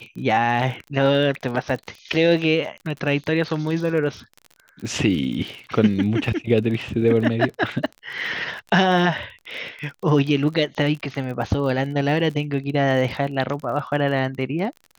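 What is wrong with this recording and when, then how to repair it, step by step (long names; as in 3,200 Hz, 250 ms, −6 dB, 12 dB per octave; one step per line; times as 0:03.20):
surface crackle 36 per second −30 dBFS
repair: click removal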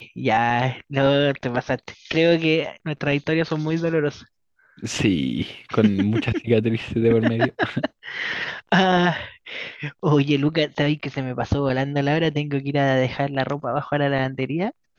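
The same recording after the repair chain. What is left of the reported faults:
none of them is left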